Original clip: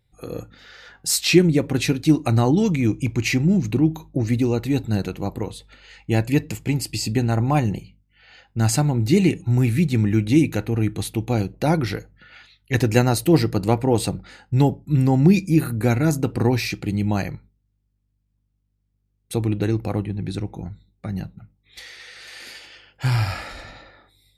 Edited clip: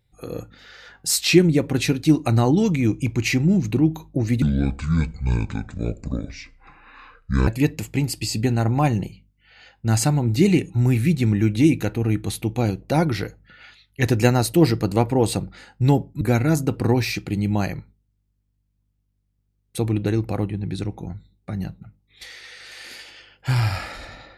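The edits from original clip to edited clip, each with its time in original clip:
4.42–6.19 s: speed 58%
14.93–15.77 s: delete

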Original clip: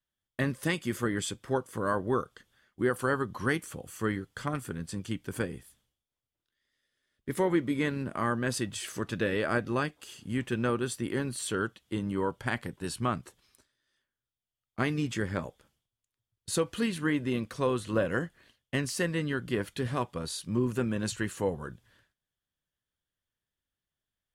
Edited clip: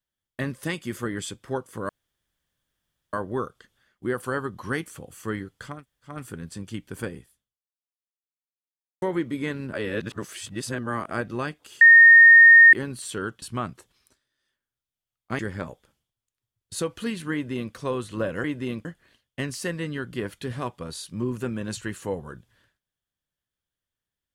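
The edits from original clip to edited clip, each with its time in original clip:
1.89 s: insert room tone 1.24 s
4.50 s: insert room tone 0.39 s, crossfade 0.24 s
5.53–7.39 s: fade out exponential
8.10–9.48 s: reverse
10.18–11.10 s: bleep 1.84 kHz -7.5 dBFS
11.79–12.90 s: delete
14.87–15.15 s: delete
17.09–17.50 s: copy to 18.20 s

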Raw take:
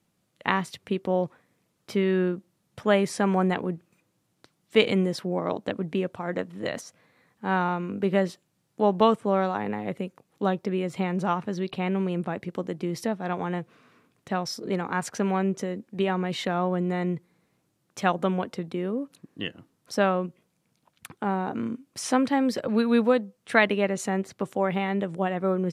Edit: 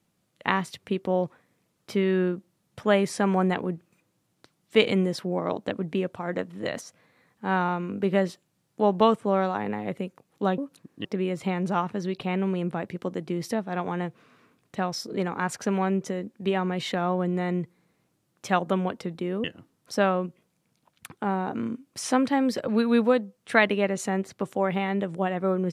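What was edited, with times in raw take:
18.97–19.44 s: move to 10.58 s

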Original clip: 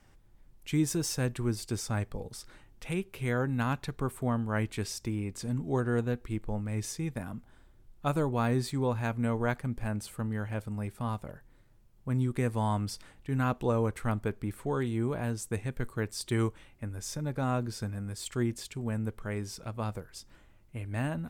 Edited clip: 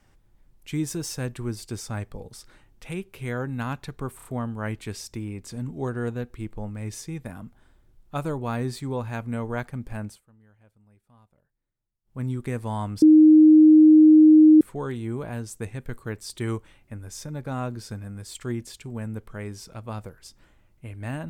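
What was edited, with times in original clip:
4.16 s: stutter 0.03 s, 4 plays
9.96–12.11 s: dip -24 dB, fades 0.16 s
12.93–14.52 s: bleep 310 Hz -9 dBFS

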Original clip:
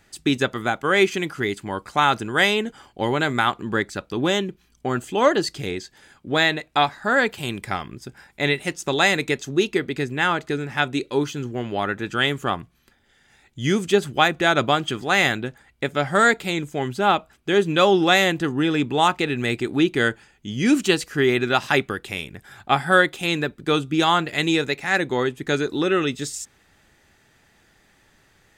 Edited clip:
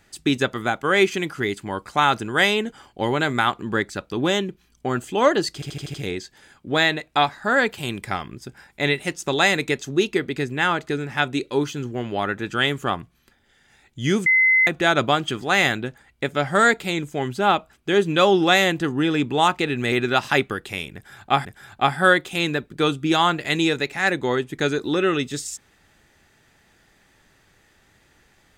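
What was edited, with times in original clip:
5.54 s: stutter 0.08 s, 6 plays
13.86–14.27 s: bleep 2.05 kHz -13 dBFS
19.52–21.31 s: delete
22.33–22.84 s: loop, 2 plays

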